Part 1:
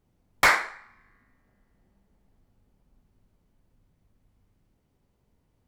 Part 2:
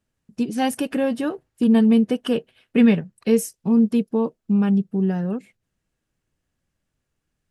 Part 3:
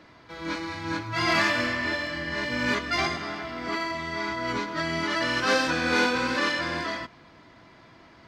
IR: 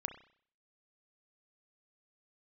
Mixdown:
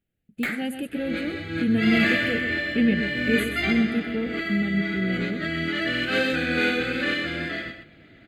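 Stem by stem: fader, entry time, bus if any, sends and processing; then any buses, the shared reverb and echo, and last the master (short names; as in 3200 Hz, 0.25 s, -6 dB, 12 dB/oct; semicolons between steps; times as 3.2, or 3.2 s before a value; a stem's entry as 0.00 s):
-7.5 dB, 0.00 s, no send, no echo send, low shelf 320 Hz -8.5 dB
-5.5 dB, 0.00 s, no send, echo send -8.5 dB, dry
+3.0 dB, 0.65 s, no send, echo send -8.5 dB, dry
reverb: off
echo: echo 0.127 s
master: bell 9100 Hz -5.5 dB 0.28 oct; fixed phaser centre 2400 Hz, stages 4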